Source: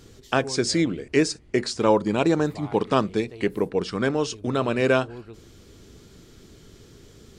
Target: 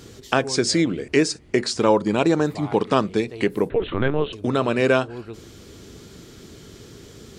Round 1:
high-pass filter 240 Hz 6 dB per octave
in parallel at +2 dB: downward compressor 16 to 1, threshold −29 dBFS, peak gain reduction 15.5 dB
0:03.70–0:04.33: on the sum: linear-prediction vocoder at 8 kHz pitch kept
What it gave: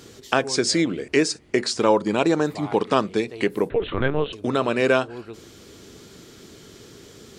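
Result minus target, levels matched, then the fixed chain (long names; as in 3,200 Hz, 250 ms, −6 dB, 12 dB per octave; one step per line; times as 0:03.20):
125 Hz band −3.0 dB
high-pass filter 80 Hz 6 dB per octave
in parallel at +2 dB: downward compressor 16 to 1, threshold −29 dBFS, peak gain reduction 16.5 dB
0:03.70–0:04.33: on the sum: linear-prediction vocoder at 8 kHz pitch kept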